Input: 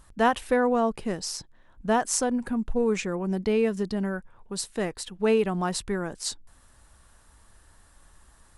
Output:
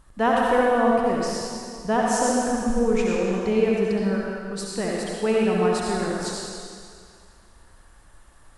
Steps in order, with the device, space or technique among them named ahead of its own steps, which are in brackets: swimming-pool hall (reverb RT60 2.2 s, pre-delay 60 ms, DRR -3.5 dB; high shelf 4100 Hz -6 dB)

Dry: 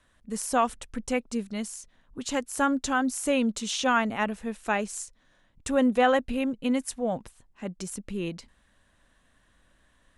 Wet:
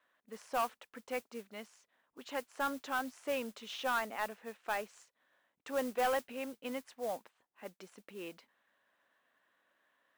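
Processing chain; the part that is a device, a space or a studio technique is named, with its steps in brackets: carbon microphone (BPF 480–2700 Hz; soft clip -19 dBFS, distortion -14 dB; modulation noise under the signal 16 dB); gain -6 dB

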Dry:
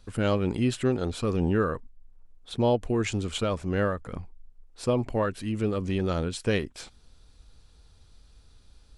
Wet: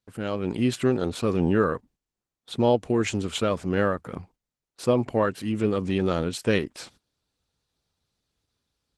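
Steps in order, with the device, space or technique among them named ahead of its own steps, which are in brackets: video call (HPF 120 Hz 12 dB/oct; AGC gain up to 9 dB; gate -47 dBFS, range -18 dB; gain -4.5 dB; Opus 16 kbps 48000 Hz)

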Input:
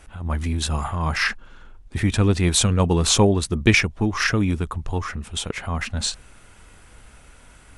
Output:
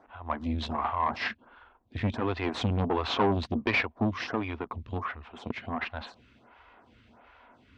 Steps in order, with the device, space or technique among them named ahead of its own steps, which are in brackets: vibe pedal into a guitar amplifier (photocell phaser 1.4 Hz; tube stage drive 21 dB, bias 0.7; speaker cabinet 88–3800 Hz, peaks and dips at 160 Hz -10 dB, 240 Hz +7 dB, 710 Hz +6 dB, 1000 Hz +7 dB)

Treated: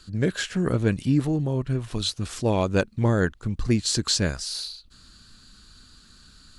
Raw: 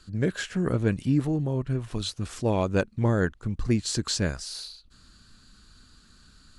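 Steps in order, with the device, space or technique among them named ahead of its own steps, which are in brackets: presence and air boost (bell 4000 Hz +3.5 dB 1.2 oct; high shelf 9700 Hz +5 dB); gain +2 dB

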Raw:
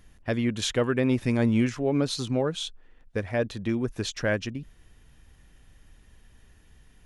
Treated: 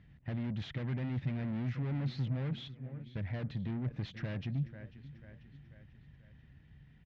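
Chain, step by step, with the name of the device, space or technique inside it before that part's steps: feedback echo 0.491 s, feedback 51%, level -21 dB; guitar amplifier (tube stage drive 35 dB, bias 0.4; tone controls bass +11 dB, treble -4 dB; speaker cabinet 81–4200 Hz, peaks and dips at 140 Hz +9 dB, 420 Hz -4 dB, 1100 Hz -4 dB, 2000 Hz +6 dB); gain -7 dB

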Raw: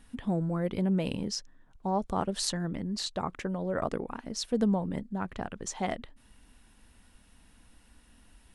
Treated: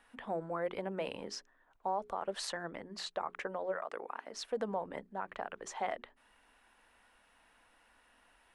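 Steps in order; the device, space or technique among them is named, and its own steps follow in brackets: DJ mixer with the lows and highs turned down (three-band isolator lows -22 dB, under 450 Hz, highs -13 dB, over 2600 Hz; limiter -27.5 dBFS, peak gain reduction 11.5 dB); 3.71–4.33 HPF 1000 Hz -> 300 Hz 6 dB/oct; notches 60/120/180/240/300/360/420 Hz; gain +2.5 dB

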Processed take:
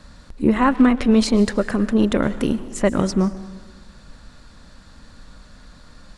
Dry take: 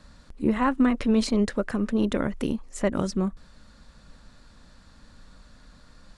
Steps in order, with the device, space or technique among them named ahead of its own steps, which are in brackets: saturated reverb return (on a send at -11 dB: reverb RT60 1.1 s, pre-delay 0.104 s + soft clip -26 dBFS, distortion -9 dB); on the sum: gain +6.5 dB

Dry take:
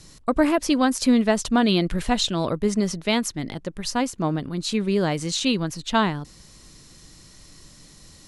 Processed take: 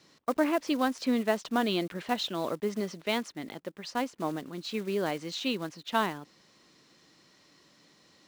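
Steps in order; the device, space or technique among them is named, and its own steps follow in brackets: early digital voice recorder (BPF 270–3800 Hz; block floating point 5-bit); gain -6 dB

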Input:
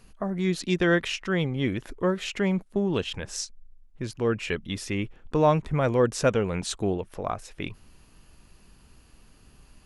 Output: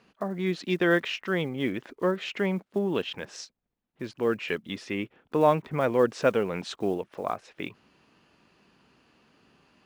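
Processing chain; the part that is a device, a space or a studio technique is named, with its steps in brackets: early digital voice recorder (BPF 210–3700 Hz; block floating point 7-bit)

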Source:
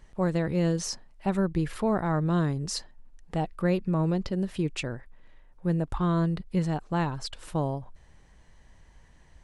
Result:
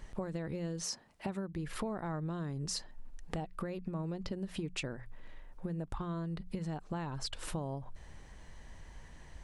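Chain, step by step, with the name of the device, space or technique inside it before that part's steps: serial compression, leveller first (compressor 3:1, threshold -28 dBFS, peak gain reduction 6.5 dB; compressor 5:1, threshold -40 dBFS, peak gain reduction 13 dB); 0.83–1.6 HPF 160 Hz -> 46 Hz 12 dB/oct; notches 60/120/180 Hz; gain +4.5 dB

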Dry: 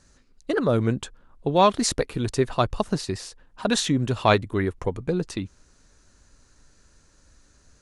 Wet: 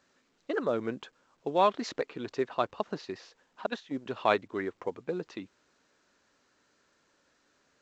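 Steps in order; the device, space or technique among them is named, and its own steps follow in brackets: 3.66–4.06 gate -20 dBFS, range -17 dB; telephone (BPF 300–3200 Hz; gain -6 dB; A-law 128 kbps 16000 Hz)

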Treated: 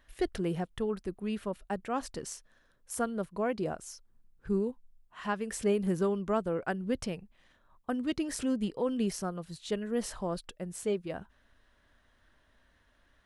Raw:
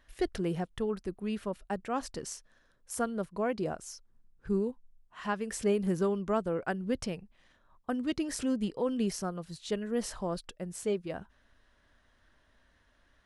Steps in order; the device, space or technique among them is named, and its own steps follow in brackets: exciter from parts (in parallel at -12.5 dB: HPF 2200 Hz + soft clip -33.5 dBFS, distortion -16 dB + HPF 4400 Hz 24 dB/oct)

